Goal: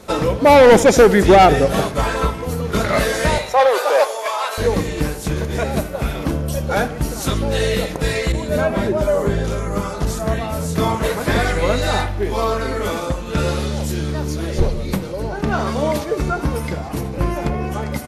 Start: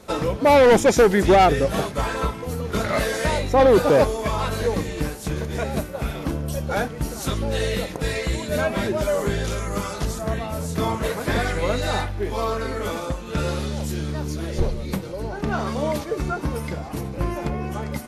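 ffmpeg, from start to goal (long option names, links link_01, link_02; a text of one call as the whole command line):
ffmpeg -i in.wav -filter_complex "[0:a]asettb=1/sr,asplit=3[link_01][link_02][link_03];[link_01]atrim=end=3.384[link_04];[link_02]atrim=start=3.38:end=4.58,asetpts=PTS-STARTPTS,afade=type=in:duration=0.004:curve=qsin,afade=type=out:start_time=1.196:duration=0.004:curve=qsin,highpass=frequency=570:width=0.5412,highpass=frequency=570:width=1.3066[link_05];[link_03]atrim=start=4.576[link_06];[link_04][link_05]acrossfade=duration=0.004:curve1=hsin:curve2=qsin[link_07];[link_07][link_06]acrossfade=duration=0.004:curve1=qsin:curve2=hsin,asplit=2[link_08][link_09];[link_09]adelay=79,lowpass=frequency=2000:poles=1,volume=-15dB,asplit=2[link_10][link_11];[link_11]adelay=79,lowpass=frequency=2000:poles=1,volume=0.54,asplit=2[link_12][link_13];[link_13]adelay=79,lowpass=frequency=2000:poles=1,volume=0.54,asplit=2[link_14][link_15];[link_15]adelay=79,lowpass=frequency=2000:poles=1,volume=0.54,asplit=2[link_16][link_17];[link_17]adelay=79,lowpass=frequency=2000:poles=1,volume=0.54[link_18];[link_08][link_10][link_12][link_14][link_16][link_18]amix=inputs=6:normalize=0,asettb=1/sr,asplit=3[link_19][link_20][link_21];[link_19]atrim=end=8.324[link_22];[link_20]atrim=start=8.32:end=10.07,asetpts=PTS-STARTPTS,afade=type=in:duration=0.004:curve=qsin,afade=type=out:start_time=1.746:duration=0.004:curve=qsin,adynamicequalizer=threshold=0.01:dfrequency=1500:dqfactor=0.7:tfrequency=1500:tqfactor=0.7:attack=5:release=100:ratio=0.375:range=4:mode=cutabove:tftype=highshelf[link_23];[link_21]atrim=start=10.066[link_24];[link_22][link_23]acrossfade=duration=0.004:curve1=hsin:curve2=qsin[link_25];[link_25][link_24]acrossfade=duration=0.004:curve1=qsin:curve2=hsin,volume=5dB" out.wav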